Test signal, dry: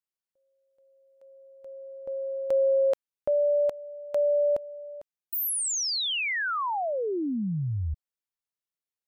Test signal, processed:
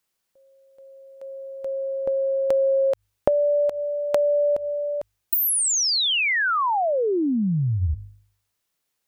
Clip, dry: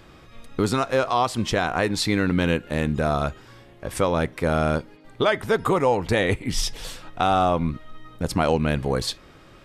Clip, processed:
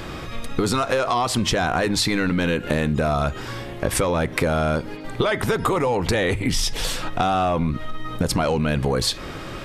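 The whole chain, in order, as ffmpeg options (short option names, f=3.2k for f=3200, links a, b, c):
-af "apsyclip=19dB,bandreject=f=50.41:t=h:w=4,bandreject=f=100.82:t=h:w=4,acompressor=threshold=-22dB:ratio=3:attack=29:release=142:knee=6:detection=peak,volume=-3dB"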